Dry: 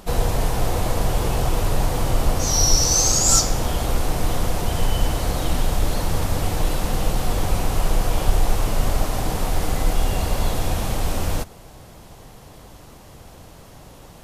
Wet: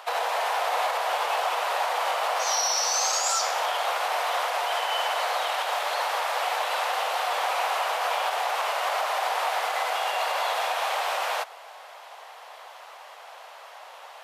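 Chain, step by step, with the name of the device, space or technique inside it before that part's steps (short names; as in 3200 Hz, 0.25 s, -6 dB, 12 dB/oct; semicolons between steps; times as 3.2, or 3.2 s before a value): DJ mixer with the lows and highs turned down (three-band isolator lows -20 dB, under 370 Hz, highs -15 dB, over 3800 Hz; limiter -21.5 dBFS, peak gain reduction 8 dB); 4–5.42 HPF 120 Hz; inverse Chebyshev high-pass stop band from 190 Hz, stop band 60 dB; gain +7 dB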